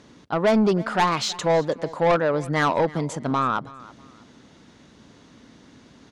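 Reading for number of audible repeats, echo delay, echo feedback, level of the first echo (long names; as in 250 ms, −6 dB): 2, 323 ms, 28%, −20.0 dB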